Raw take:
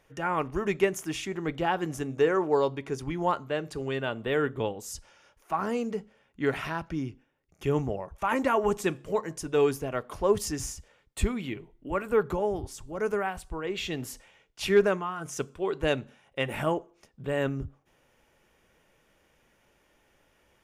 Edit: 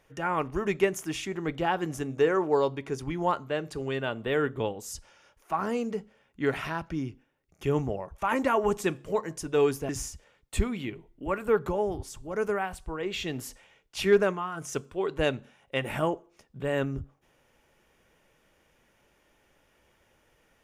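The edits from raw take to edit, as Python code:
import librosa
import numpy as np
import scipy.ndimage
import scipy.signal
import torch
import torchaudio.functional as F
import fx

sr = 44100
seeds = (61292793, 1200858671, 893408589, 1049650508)

y = fx.edit(x, sr, fx.cut(start_s=9.89, length_s=0.64), tone=tone)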